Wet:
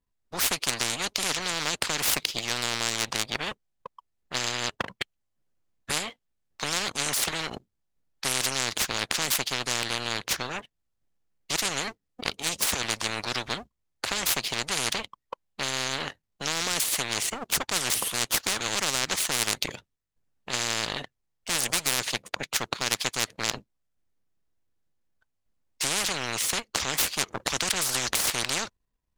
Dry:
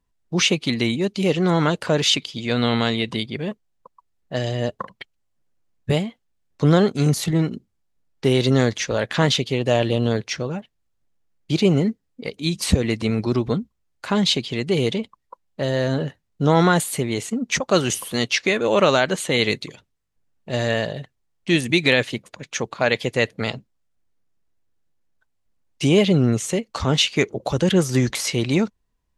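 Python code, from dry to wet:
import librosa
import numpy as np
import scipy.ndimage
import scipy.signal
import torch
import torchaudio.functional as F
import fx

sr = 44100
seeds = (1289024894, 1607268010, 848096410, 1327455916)

y = fx.power_curve(x, sr, exponent=1.4)
y = fx.spectral_comp(y, sr, ratio=10.0)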